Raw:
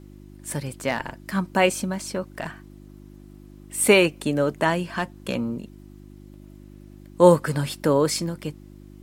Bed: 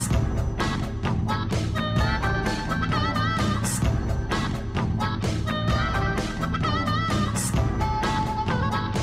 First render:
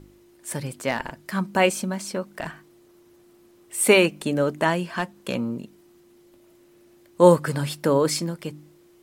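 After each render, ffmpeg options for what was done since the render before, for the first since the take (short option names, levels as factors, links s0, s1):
-af "bandreject=f=50:t=h:w=4,bandreject=f=100:t=h:w=4,bandreject=f=150:t=h:w=4,bandreject=f=200:t=h:w=4,bandreject=f=250:t=h:w=4,bandreject=f=300:t=h:w=4"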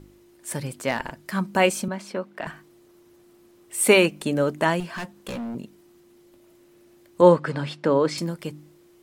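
-filter_complex "[0:a]asettb=1/sr,asplit=3[s0][s1][s2];[s0]atrim=end=1.884[s3];[s1]atrim=start=1.88:end=2.47,asetpts=PTS-STARTPTS,afade=t=in:d=0.004:c=qsin,afade=t=out:st=0.586:d=0.004:c=qsin,acrossover=split=180 4000:gain=0.251 1 0.224[s4][s5][s6];[s4][s5][s6]amix=inputs=3:normalize=0[s7];[s2]atrim=start=2.466[s8];[s3][s7]acrossfade=d=0.004:c1=hsin:c2=qsin[s9];[s9][s8]acrossfade=d=0.004:c1=qsin:c2=hsin,asettb=1/sr,asplit=3[s10][s11][s12];[s10]atrim=end=4.804[s13];[s11]atrim=start=4.8:end=5.55,asetpts=PTS-STARTPTS,afade=t=in:d=0.004:c=qsin,afade=t=out:st=0.746:d=0.004:c=qsin,asoftclip=type=hard:threshold=0.0355[s14];[s12]atrim=start=5.546[s15];[s13][s14]acrossfade=d=0.004:c1=hsin:c2=qsin[s16];[s16][s15]acrossfade=d=0.004:c1=qsin:c2=hsin,asettb=1/sr,asplit=3[s17][s18][s19];[s17]atrim=end=7.214[s20];[s18]atrim=start=7.21:end=8.18,asetpts=PTS-STARTPTS,afade=t=in:d=0.004:c=qsin,afade=t=out:st=0.966:d=0.004:c=qsin,highpass=150,lowpass=3900[s21];[s19]atrim=start=8.176[s22];[s20][s21]acrossfade=d=0.004:c1=hsin:c2=qsin[s23];[s23][s22]acrossfade=d=0.004:c1=qsin:c2=hsin"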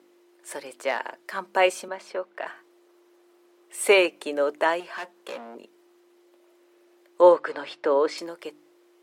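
-af "highpass=f=380:w=0.5412,highpass=f=380:w=1.3066,aemphasis=mode=reproduction:type=cd"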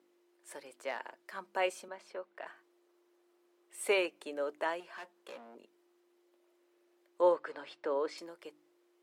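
-af "volume=0.251"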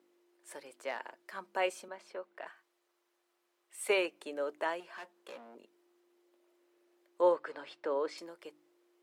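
-filter_complex "[0:a]asettb=1/sr,asplit=3[s0][s1][s2];[s0]atrim=end=2.494[s3];[s1]atrim=start=2.49:end=3.9,asetpts=PTS-STARTPTS,afade=t=in:d=0.004:c=qsin,afade=t=out:st=1.406:d=0.004:c=qsin,equalizer=f=310:t=o:w=1.9:g=-12[s4];[s2]atrim=start=3.896[s5];[s3][s4]acrossfade=d=0.004:c1=hsin:c2=qsin[s6];[s6][s5]acrossfade=d=0.004:c1=qsin:c2=hsin"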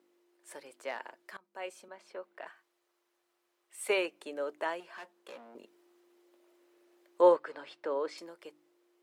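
-filter_complex "[0:a]asettb=1/sr,asplit=3[s0][s1][s2];[s0]atrim=end=5.554[s3];[s1]atrim=start=5.55:end=7.37,asetpts=PTS-STARTPTS,afade=t=in:d=0.004:c=qsin,afade=t=out:st=1.816:d=0.004:c=qsin,acontrast=23[s4];[s2]atrim=start=7.366[s5];[s3][s4]acrossfade=d=0.004:c1=hsin:c2=qsin[s6];[s6][s5]acrossfade=d=0.004:c1=qsin:c2=hsin,asplit=2[s7][s8];[s7]atrim=end=1.37,asetpts=PTS-STARTPTS,afade=t=out:st=1.366:d=0.004:c=hsin:silence=0.0668344[s9];[s8]atrim=start=1.37,asetpts=PTS-STARTPTS,afade=t=in:d=0.87:silence=0.0668344[s10];[s9][s10]concat=n=2:v=0:a=1"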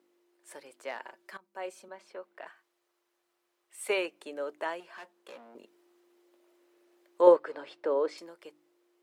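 -filter_complex "[0:a]asettb=1/sr,asplit=3[s0][s1][s2];[s0]atrim=end=1.054[s3];[s1]atrim=start=1.05:end=2.05,asetpts=PTS-STARTPTS,afade=t=in:d=0.004:c=qsin,afade=t=out:st=0.996:d=0.004:c=qsin,aecho=1:1:5.2:0.55,atrim=end_sample=44100[s4];[s2]atrim=start=2.046[s5];[s3][s4]acrossfade=d=0.004:c1=hsin:c2=qsin[s6];[s6][s5]acrossfade=d=0.004:c1=qsin:c2=hsin,asettb=1/sr,asplit=3[s7][s8][s9];[s7]atrim=end=7.274[s10];[s8]atrim=start=7.27:end=8.17,asetpts=PTS-STARTPTS,afade=t=in:d=0.004:c=qsin,afade=t=out:st=0.896:d=0.004:c=qsin,equalizer=f=430:t=o:w=1.8:g=6[s11];[s9]atrim=start=8.166[s12];[s10][s11]acrossfade=d=0.004:c1=hsin:c2=qsin[s13];[s13][s12]acrossfade=d=0.004:c1=qsin:c2=hsin"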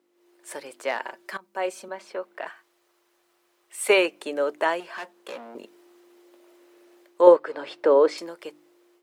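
-af "dynaudnorm=f=140:g=3:m=3.55"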